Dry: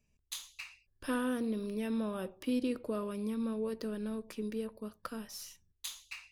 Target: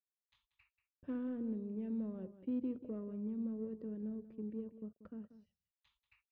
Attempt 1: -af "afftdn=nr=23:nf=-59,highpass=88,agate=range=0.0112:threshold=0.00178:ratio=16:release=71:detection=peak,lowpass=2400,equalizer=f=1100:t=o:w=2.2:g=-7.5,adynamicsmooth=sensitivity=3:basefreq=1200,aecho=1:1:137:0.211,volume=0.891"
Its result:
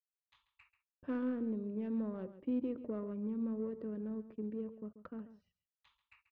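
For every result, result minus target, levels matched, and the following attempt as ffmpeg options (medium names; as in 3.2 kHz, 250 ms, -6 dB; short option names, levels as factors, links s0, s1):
1 kHz band +6.5 dB; echo 49 ms early
-af "afftdn=nr=23:nf=-59,highpass=88,agate=range=0.0112:threshold=0.00178:ratio=16:release=71:detection=peak,lowpass=2400,equalizer=f=1100:t=o:w=2.2:g=-18,adynamicsmooth=sensitivity=3:basefreq=1200,aecho=1:1:137:0.211,volume=0.891"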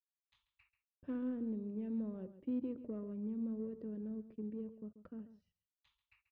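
echo 49 ms early
-af "afftdn=nr=23:nf=-59,highpass=88,agate=range=0.0112:threshold=0.00178:ratio=16:release=71:detection=peak,lowpass=2400,equalizer=f=1100:t=o:w=2.2:g=-18,adynamicsmooth=sensitivity=3:basefreq=1200,aecho=1:1:186:0.211,volume=0.891"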